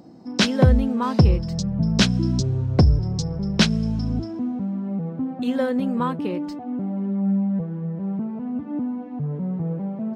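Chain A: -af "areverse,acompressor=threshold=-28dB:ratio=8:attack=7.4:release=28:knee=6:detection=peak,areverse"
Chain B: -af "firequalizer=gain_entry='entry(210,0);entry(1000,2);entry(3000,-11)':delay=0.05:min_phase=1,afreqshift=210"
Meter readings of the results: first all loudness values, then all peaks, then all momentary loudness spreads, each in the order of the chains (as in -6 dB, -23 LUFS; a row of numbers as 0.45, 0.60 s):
-30.5, -22.5 LUFS; -17.5, -2.5 dBFS; 2, 11 LU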